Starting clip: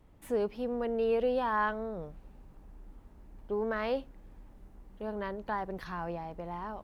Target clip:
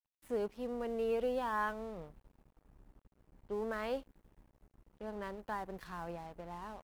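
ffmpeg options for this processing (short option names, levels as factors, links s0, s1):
-af "aeval=exprs='sgn(val(0))*max(abs(val(0))-0.00266,0)':c=same,adynamicequalizer=threshold=0.00112:dfrequency=7000:dqfactor=0.7:tfrequency=7000:tqfactor=0.7:attack=5:release=100:ratio=0.375:range=3.5:mode=boostabove:tftype=highshelf,volume=0.562"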